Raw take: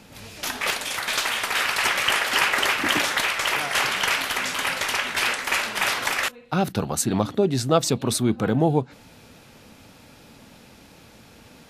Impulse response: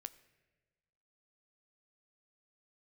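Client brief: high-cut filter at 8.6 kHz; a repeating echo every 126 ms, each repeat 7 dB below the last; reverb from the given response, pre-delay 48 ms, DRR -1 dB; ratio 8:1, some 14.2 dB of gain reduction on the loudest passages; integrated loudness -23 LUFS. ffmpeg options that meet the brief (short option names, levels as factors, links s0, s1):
-filter_complex "[0:a]lowpass=8600,acompressor=threshold=0.0316:ratio=8,aecho=1:1:126|252|378|504|630:0.447|0.201|0.0905|0.0407|0.0183,asplit=2[s0][s1];[1:a]atrim=start_sample=2205,adelay=48[s2];[s1][s2]afir=irnorm=-1:irlink=0,volume=2[s3];[s0][s3]amix=inputs=2:normalize=0,volume=1.78"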